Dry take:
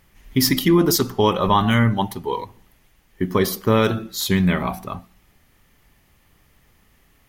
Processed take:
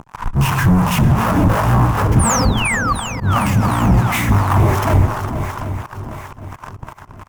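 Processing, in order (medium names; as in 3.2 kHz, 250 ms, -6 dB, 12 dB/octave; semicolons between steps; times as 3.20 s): compression 12:1, threshold -28 dBFS, peak gain reduction 17.5 dB; de-hum 58.86 Hz, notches 11; pitch shift -11 st; distance through air 160 m; fuzz box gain 56 dB, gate -53 dBFS; reverberation RT60 0.20 s, pre-delay 88 ms, DRR 13.5 dB; painted sound fall, 2.19–2.93 s, 1.1–10 kHz -15 dBFS; ten-band graphic EQ 125 Hz +4 dB, 500 Hz -8 dB, 1 kHz +9 dB, 2 kHz -4 dB, 4 kHz -12 dB, 8 kHz -4 dB; shuffle delay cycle 758 ms, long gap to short 1.5:1, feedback 41%, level -9 dB; slow attack 104 ms; harmonic tremolo 2.8 Hz, depth 70%, crossover 610 Hz; trim +2.5 dB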